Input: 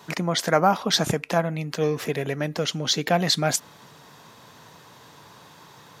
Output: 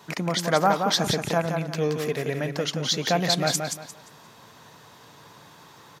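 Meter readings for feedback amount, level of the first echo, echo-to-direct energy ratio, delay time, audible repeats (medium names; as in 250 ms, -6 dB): 27%, -5.5 dB, -5.0 dB, 175 ms, 3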